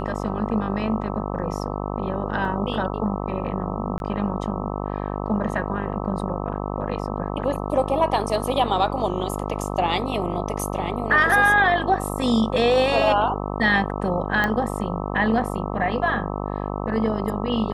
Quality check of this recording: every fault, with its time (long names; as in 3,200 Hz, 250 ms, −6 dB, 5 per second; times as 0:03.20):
mains buzz 50 Hz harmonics 26 −28 dBFS
0:02.45: drop-out 2.4 ms
0:03.98–0:04.00: drop-out 21 ms
0:14.44: click −10 dBFS